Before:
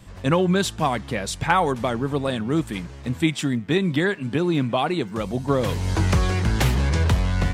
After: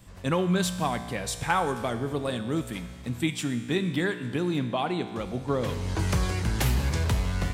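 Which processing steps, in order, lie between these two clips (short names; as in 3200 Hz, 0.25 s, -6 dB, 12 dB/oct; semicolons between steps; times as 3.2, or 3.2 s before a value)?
high shelf 8800 Hz +9.5 dB, from 4.59 s -3 dB, from 5.99 s +10.5 dB; resonator 60 Hz, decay 1.7 s, harmonics all, mix 70%; gain +3 dB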